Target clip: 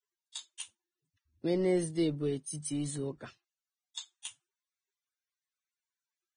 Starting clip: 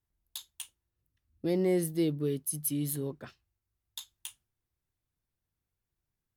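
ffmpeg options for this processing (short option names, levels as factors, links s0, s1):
-filter_complex "[0:a]lowshelf=f=190:g=-3,acrossover=split=230|1100|7400[s0][s1][s2][s3];[s0]aeval=exprs='clip(val(0),-1,0.0133)':c=same[s4];[s4][s1][s2][s3]amix=inputs=4:normalize=0" -ar 22050 -c:a libvorbis -b:a 16k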